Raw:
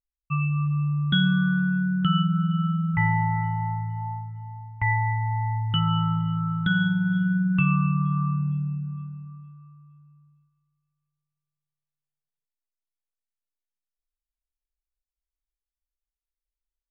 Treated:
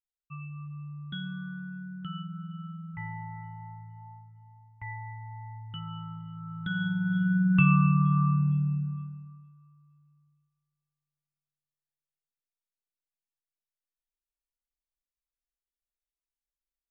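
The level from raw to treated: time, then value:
0:06.32 −16 dB
0:06.88 −6.5 dB
0:07.57 +0.5 dB
0:08.81 +0.5 dB
0:09.52 −9.5 dB

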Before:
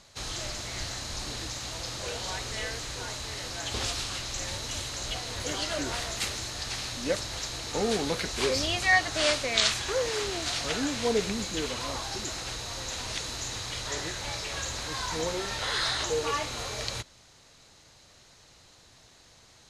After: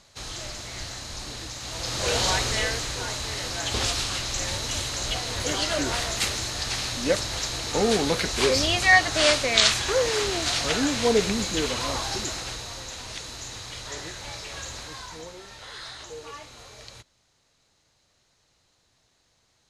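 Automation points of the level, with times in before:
0:01.57 −0.5 dB
0:02.19 +12 dB
0:02.94 +5.5 dB
0:12.13 +5.5 dB
0:12.94 −2.5 dB
0:14.78 −2.5 dB
0:15.32 −11 dB

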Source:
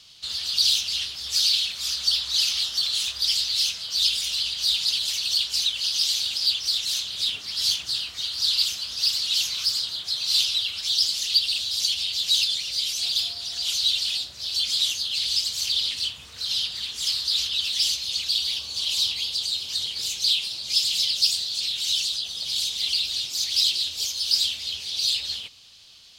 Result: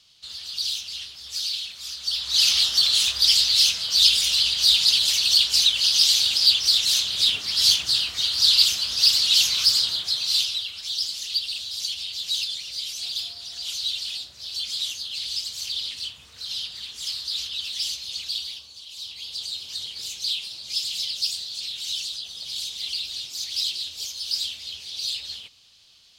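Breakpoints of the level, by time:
0:02.00 −7 dB
0:02.48 +5.5 dB
0:09.90 +5.5 dB
0:10.70 −5 dB
0:18.37 −5 dB
0:18.87 −16.5 dB
0:19.39 −5 dB

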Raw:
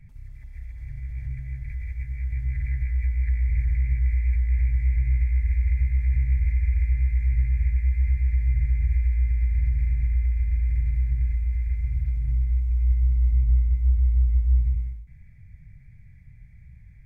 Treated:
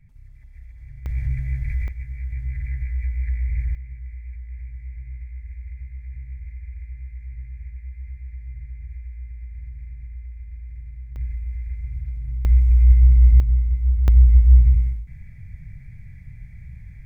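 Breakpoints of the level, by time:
−4.5 dB
from 0:01.06 +7.5 dB
from 0:01.88 −1 dB
from 0:03.75 −13 dB
from 0:11.16 −4 dB
from 0:12.45 +8.5 dB
from 0:13.40 +1 dB
from 0:14.08 +8.5 dB

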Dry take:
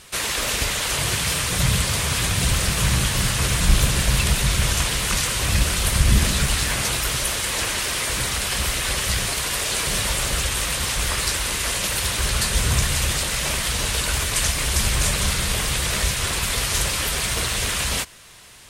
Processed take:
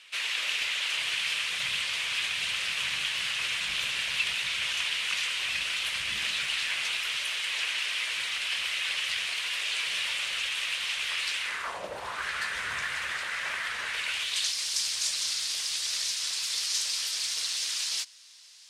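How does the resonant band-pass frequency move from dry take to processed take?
resonant band-pass, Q 2.2
0:11.39 2,700 Hz
0:11.90 540 Hz
0:12.27 1,700 Hz
0:13.85 1,700 Hz
0:14.58 5,000 Hz

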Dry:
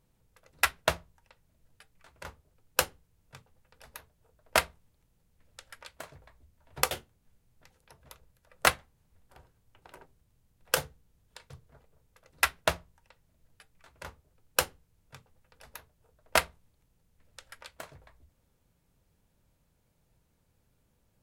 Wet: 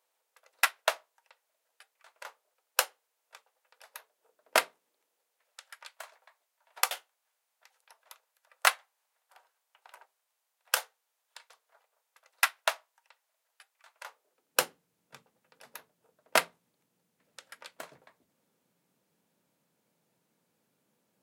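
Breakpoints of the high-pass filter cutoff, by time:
high-pass filter 24 dB per octave
0:03.93 560 Hz
0:04.60 260 Hz
0:05.61 680 Hz
0:14.03 680 Hz
0:14.61 180 Hz

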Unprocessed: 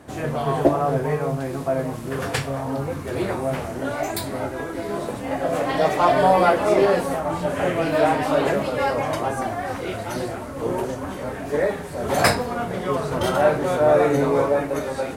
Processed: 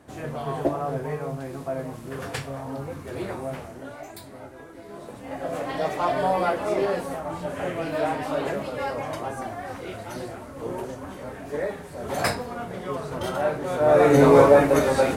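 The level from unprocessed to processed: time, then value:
0:03.44 −7 dB
0:04.06 −14.5 dB
0:04.85 −14.5 dB
0:05.46 −7 dB
0:13.65 −7 dB
0:14.26 +6 dB

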